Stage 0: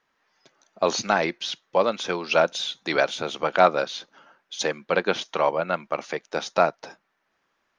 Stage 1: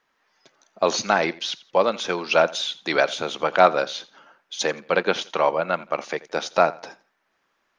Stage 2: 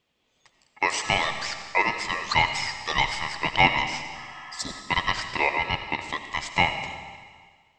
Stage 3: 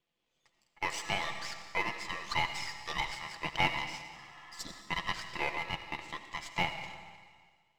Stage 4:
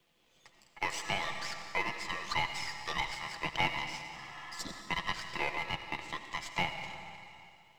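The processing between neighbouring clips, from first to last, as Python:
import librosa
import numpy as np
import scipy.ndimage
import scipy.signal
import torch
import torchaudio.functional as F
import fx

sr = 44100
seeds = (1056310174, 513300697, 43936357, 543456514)

y1 = fx.peak_eq(x, sr, hz=84.0, db=-3.5, octaves=2.6)
y1 = fx.echo_feedback(y1, sr, ms=85, feedback_pct=28, wet_db=-20)
y1 = y1 * 10.0 ** (2.0 / 20.0)
y2 = y1 * np.sin(2.0 * np.pi * 1500.0 * np.arange(len(y1)) / sr)
y2 = fx.spec_repair(y2, sr, seeds[0], start_s=4.17, length_s=0.55, low_hz=690.0, high_hz=3400.0, source='after')
y2 = fx.rev_freeverb(y2, sr, rt60_s=1.7, hf_ratio=1.0, predelay_ms=45, drr_db=8.0)
y2 = y2 * 10.0 ** (-1.0 / 20.0)
y3 = np.where(y2 < 0.0, 10.0 ** (-7.0 / 20.0) * y2, y2)
y3 = y3 + 0.34 * np.pad(y3, (int(5.9 * sr / 1000.0), 0))[:len(y3)]
y3 = y3 * 10.0 ** (-8.5 / 20.0)
y4 = fx.band_squash(y3, sr, depth_pct=40)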